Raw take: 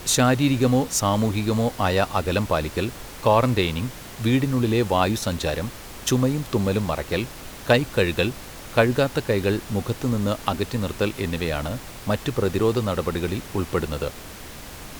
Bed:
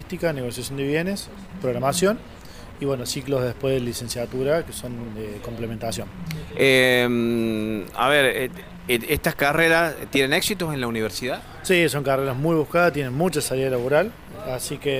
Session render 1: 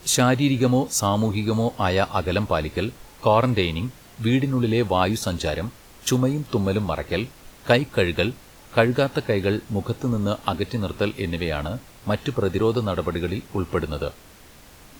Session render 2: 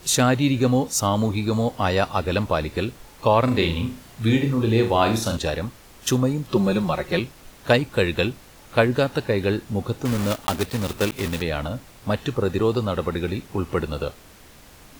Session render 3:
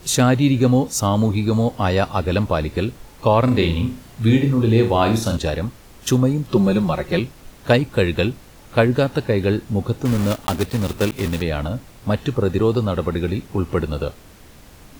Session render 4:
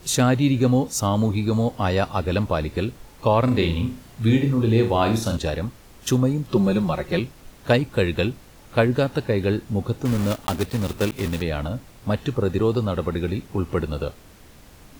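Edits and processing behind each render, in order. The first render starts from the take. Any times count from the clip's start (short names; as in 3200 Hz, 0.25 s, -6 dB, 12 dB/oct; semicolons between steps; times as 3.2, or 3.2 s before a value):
noise print and reduce 9 dB
3.44–5.37 flutter echo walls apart 6.1 m, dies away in 0.36 s; 6.51–7.19 comb 5.5 ms, depth 78%; 10.05–11.42 block floating point 3-bit
low shelf 430 Hz +5.5 dB
gain -3 dB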